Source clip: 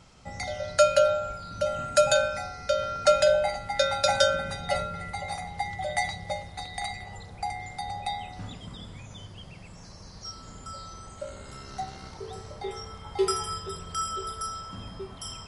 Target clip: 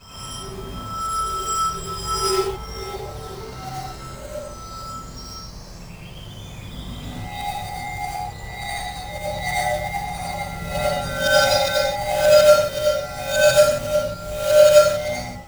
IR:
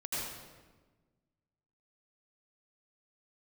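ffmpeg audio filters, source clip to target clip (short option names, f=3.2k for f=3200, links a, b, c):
-filter_complex "[0:a]areverse,acrusher=bits=3:mode=log:mix=0:aa=0.000001[a];[1:a]atrim=start_sample=2205,afade=t=out:st=0.33:d=0.01,atrim=end_sample=14994[b];[a][b]afir=irnorm=-1:irlink=0,volume=3.5dB"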